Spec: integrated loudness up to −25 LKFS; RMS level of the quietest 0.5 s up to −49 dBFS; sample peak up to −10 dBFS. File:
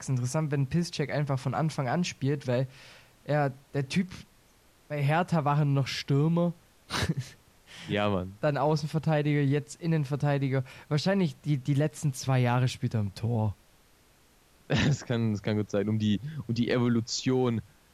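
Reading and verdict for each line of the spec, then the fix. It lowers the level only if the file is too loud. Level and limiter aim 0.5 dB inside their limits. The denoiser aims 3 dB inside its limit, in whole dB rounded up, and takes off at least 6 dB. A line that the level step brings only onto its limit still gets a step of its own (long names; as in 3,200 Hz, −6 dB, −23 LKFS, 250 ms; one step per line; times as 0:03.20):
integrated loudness −29.0 LKFS: in spec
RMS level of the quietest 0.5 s −61 dBFS: in spec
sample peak −13.0 dBFS: in spec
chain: no processing needed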